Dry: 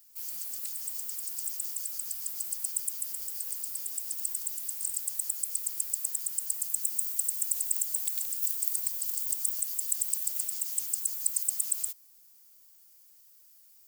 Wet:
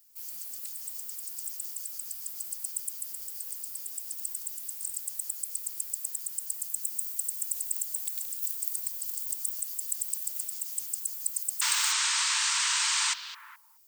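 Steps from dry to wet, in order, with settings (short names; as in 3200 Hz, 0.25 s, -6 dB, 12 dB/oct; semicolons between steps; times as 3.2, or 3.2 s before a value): painted sound noise, 11.61–13.14, 870–8900 Hz -25 dBFS; delay with a stepping band-pass 0.211 s, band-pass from 3500 Hz, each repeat -1.4 oct, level -10 dB; gain -2.5 dB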